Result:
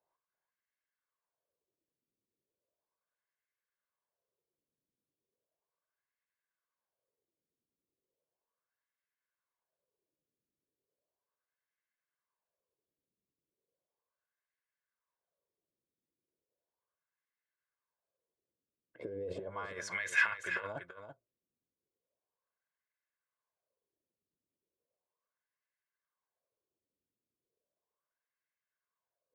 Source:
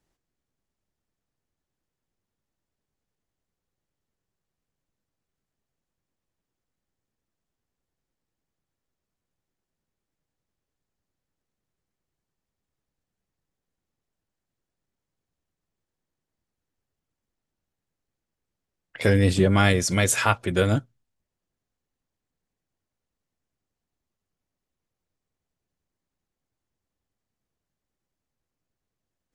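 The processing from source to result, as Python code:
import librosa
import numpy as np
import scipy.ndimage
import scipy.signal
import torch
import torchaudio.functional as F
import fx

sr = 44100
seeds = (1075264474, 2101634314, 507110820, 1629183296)

p1 = x + 0.55 * np.pad(x, (int(1.9 * sr / 1000.0), 0))[:len(x)]
p2 = fx.over_compress(p1, sr, threshold_db=-22.0, ratio=-0.5)
p3 = fx.wah_lfo(p2, sr, hz=0.36, low_hz=260.0, high_hz=1900.0, q=3.7)
p4 = p3 + fx.echo_single(p3, sr, ms=335, db=-9.0, dry=0)
y = p4 * librosa.db_to_amplitude(-1.5)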